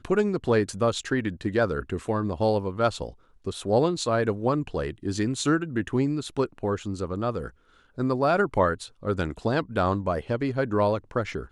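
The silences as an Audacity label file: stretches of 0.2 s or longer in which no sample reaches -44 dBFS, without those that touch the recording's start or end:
3.130000	3.440000	silence
7.500000	7.980000	silence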